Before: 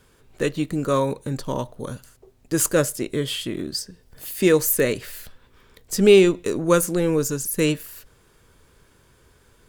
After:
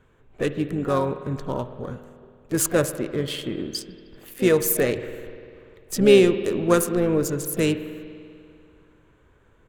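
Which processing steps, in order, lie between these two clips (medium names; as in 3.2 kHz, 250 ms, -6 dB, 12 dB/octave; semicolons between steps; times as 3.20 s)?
local Wiener filter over 9 samples; harmony voices -7 st -16 dB, +5 st -15 dB; spring tank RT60 2.4 s, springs 49 ms, chirp 30 ms, DRR 11 dB; trim -1.5 dB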